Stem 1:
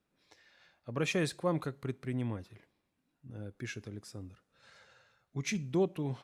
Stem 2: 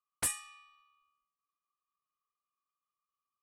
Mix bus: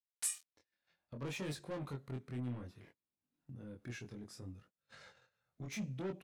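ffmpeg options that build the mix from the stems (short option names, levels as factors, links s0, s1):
-filter_complex "[0:a]agate=range=0.0282:threshold=0.00112:ratio=16:detection=peak,asoftclip=type=tanh:threshold=0.0188,adelay=250,volume=0.75[s0];[1:a]aeval=exprs='val(0)*gte(abs(val(0)),0.00841)':c=same,bandpass=f=6700:t=q:w=0.88:csg=0,volume=1.12[s1];[s0][s1]amix=inputs=2:normalize=0,flanger=delay=20:depth=4.6:speed=0.63,acompressor=mode=upward:threshold=0.00398:ratio=2.5,equalizer=f=180:t=o:w=1.7:g=3.5"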